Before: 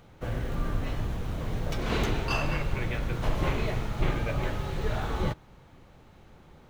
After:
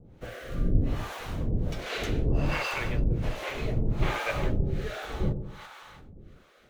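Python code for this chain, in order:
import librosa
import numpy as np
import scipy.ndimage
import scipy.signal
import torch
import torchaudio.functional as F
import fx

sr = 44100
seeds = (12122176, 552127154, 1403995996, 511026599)

y = fx.echo_split(x, sr, split_hz=920.0, low_ms=96, high_ms=337, feedback_pct=52, wet_db=-10.0)
y = fx.rotary(y, sr, hz=0.65)
y = fx.harmonic_tremolo(y, sr, hz=1.3, depth_pct=100, crossover_hz=520.0)
y = y * 10.0 ** (7.0 / 20.0)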